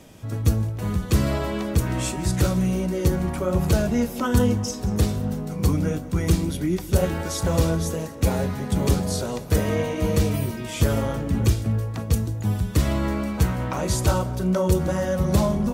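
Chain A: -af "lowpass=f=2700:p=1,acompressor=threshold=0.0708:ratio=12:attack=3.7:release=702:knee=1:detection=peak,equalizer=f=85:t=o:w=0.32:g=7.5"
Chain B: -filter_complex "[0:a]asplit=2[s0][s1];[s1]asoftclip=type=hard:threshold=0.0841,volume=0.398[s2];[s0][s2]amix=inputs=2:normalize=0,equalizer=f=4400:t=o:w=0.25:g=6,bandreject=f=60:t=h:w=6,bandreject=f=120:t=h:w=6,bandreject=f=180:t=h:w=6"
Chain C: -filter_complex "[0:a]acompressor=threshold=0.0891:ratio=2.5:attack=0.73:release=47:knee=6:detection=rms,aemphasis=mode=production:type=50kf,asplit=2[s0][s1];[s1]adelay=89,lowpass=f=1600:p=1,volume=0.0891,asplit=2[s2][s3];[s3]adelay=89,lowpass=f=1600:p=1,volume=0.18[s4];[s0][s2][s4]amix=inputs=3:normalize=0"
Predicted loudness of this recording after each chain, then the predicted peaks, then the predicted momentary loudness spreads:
-30.0 LUFS, -22.0 LUFS, -25.5 LUFS; -15.5 dBFS, -5.5 dBFS, -9.5 dBFS; 2 LU, 4 LU, 4 LU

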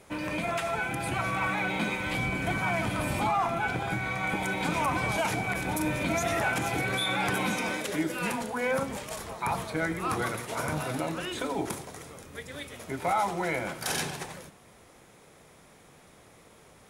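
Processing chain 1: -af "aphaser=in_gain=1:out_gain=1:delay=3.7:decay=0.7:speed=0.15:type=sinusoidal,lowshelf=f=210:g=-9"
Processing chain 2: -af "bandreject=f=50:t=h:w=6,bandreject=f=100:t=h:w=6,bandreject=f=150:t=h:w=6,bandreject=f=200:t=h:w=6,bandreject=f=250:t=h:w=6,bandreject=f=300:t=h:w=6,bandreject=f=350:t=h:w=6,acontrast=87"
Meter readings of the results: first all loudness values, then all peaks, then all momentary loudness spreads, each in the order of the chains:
-27.0 LUFS, -23.0 LUFS; -9.0 dBFS, -9.0 dBFS; 13 LU, 9 LU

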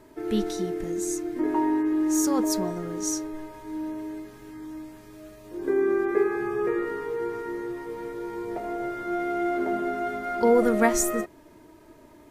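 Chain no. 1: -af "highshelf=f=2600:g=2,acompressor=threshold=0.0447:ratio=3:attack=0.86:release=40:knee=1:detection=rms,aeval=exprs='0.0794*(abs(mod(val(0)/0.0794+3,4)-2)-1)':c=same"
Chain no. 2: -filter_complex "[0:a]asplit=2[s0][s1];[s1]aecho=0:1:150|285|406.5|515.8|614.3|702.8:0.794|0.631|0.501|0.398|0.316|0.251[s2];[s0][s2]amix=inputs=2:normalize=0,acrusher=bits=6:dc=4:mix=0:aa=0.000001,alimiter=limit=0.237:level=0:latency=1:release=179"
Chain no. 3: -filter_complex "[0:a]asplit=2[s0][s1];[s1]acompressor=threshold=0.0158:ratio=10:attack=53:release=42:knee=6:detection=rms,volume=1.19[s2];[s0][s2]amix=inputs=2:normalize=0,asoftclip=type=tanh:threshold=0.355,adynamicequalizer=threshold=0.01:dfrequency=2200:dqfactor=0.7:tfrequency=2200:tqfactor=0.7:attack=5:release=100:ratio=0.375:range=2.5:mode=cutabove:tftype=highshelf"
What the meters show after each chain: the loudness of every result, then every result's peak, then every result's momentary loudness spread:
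-31.5 LUFS, -24.5 LUFS, -25.0 LUFS; -22.0 dBFS, -12.5 dBFS, -10.0 dBFS; 11 LU, 10 LU, 12 LU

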